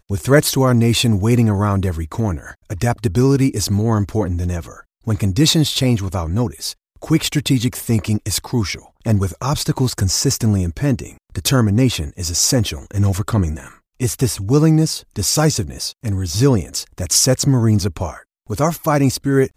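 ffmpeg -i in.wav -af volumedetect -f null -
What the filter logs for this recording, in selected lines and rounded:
mean_volume: -17.4 dB
max_volume: -1.1 dB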